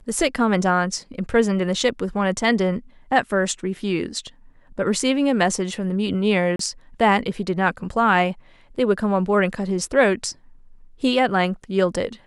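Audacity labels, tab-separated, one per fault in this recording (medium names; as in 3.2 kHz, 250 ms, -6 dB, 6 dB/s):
6.560000	6.590000	dropout 33 ms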